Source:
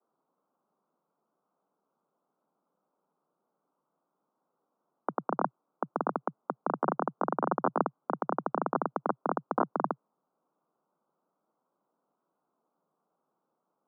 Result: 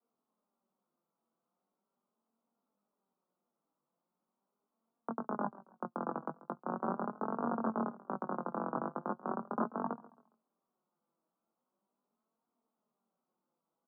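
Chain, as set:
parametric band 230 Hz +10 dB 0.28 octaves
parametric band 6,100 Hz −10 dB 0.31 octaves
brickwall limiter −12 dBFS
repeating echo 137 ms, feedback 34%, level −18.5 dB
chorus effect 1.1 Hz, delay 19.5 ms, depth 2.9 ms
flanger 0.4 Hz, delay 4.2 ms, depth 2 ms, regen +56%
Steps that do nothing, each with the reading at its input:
parametric band 6,100 Hz: nothing at its input above 1,600 Hz

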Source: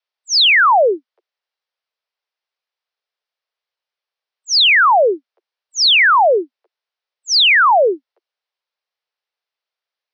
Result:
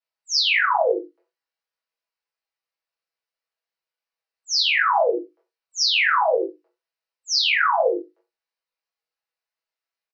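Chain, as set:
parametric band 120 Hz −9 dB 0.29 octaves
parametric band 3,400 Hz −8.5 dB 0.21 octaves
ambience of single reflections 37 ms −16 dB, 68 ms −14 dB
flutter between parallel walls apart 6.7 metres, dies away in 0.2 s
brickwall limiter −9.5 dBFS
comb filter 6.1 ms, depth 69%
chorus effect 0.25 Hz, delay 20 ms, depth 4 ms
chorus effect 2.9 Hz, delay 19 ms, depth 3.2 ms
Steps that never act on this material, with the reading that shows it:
parametric band 120 Hz: nothing at its input below 290 Hz

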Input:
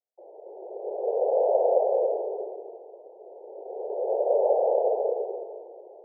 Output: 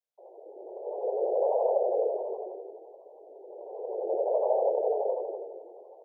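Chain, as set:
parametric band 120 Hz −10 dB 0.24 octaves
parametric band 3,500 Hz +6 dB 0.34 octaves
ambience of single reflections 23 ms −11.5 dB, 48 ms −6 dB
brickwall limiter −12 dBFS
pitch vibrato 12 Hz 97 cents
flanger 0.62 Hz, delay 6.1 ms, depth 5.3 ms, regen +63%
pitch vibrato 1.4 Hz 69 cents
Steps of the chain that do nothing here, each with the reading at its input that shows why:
parametric band 120 Hz: nothing at its input below 320 Hz
parametric band 3,500 Hz: nothing at its input above 960 Hz

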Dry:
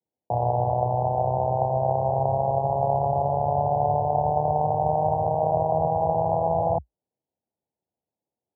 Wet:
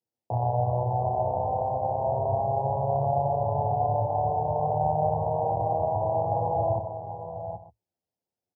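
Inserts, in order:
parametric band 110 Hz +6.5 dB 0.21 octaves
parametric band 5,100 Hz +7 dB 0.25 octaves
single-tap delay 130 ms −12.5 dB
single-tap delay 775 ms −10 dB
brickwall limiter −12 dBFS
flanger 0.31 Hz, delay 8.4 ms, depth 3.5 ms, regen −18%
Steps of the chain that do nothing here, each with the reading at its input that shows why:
parametric band 5,100 Hz: nothing at its input above 1,100 Hz

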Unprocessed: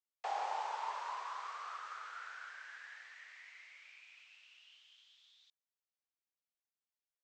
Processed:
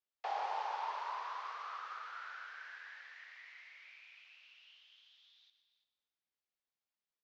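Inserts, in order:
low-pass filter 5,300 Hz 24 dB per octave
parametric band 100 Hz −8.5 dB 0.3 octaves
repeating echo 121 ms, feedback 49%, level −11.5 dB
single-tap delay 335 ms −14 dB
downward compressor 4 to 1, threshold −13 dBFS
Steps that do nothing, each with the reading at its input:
parametric band 100 Hz: nothing at its input below 360 Hz
downward compressor, threshold −13 dBFS: peak of its input −27.5 dBFS

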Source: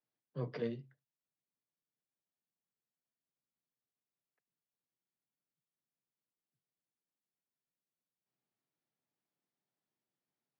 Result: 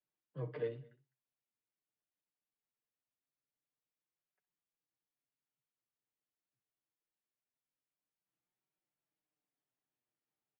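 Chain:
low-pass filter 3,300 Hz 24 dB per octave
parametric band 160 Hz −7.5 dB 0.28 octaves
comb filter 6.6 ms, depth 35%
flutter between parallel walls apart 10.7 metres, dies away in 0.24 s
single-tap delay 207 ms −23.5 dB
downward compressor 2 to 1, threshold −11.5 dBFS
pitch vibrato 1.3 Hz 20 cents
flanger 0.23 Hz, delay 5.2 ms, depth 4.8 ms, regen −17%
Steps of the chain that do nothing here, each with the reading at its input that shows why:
downward compressor, threshold −11.5 dBFS: peak of its input −24.5 dBFS

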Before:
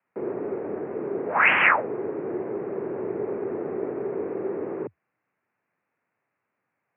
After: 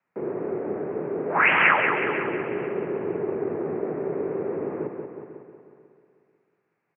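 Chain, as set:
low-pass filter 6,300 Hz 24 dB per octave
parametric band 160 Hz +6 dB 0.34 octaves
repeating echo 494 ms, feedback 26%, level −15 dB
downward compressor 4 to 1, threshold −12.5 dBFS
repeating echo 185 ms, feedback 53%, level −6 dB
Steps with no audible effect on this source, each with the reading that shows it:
low-pass filter 6,300 Hz: nothing at its input above 2,900 Hz

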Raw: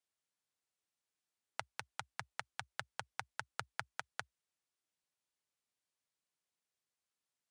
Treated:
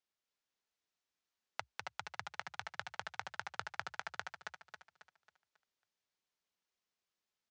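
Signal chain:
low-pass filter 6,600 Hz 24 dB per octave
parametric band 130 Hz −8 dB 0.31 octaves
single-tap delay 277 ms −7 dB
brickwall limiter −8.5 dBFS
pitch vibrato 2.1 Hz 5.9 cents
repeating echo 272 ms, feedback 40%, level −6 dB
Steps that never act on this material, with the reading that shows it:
brickwall limiter −8.5 dBFS: peak of its input −19.5 dBFS

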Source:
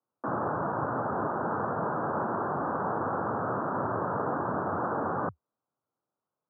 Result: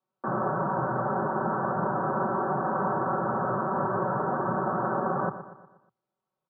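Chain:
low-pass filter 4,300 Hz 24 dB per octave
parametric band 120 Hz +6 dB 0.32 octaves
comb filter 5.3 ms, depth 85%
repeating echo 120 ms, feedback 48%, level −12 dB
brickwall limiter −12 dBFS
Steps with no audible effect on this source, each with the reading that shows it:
low-pass filter 4,300 Hz: nothing at its input above 1,800 Hz
brickwall limiter −12 dBFS: peak of its input −15.0 dBFS

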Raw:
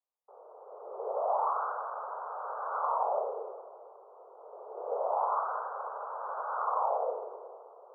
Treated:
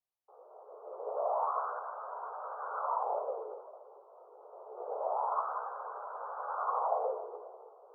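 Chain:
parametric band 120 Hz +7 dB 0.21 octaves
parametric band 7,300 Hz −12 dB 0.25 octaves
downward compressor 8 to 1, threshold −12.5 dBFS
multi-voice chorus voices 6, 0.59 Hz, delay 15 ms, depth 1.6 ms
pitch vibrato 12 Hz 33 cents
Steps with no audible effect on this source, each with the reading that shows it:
parametric band 120 Hz: nothing at its input below 340 Hz
parametric band 7,300 Hz: nothing at its input above 1,600 Hz
downward compressor, threshold −12.5 dBFS: peak of its input −18.0 dBFS

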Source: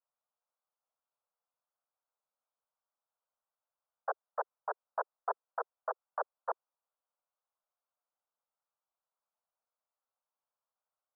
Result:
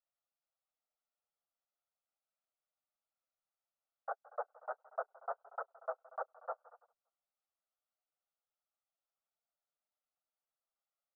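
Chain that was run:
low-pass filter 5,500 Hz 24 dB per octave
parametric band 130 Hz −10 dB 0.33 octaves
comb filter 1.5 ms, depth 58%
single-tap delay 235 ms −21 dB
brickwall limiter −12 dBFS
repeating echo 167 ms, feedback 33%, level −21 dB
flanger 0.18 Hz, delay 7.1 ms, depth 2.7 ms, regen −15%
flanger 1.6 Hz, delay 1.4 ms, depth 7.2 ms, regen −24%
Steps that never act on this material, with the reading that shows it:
low-pass filter 5,500 Hz: nothing at its input above 1,800 Hz
parametric band 130 Hz: nothing at its input below 360 Hz
brickwall limiter −12 dBFS: peak of its input −18.5 dBFS

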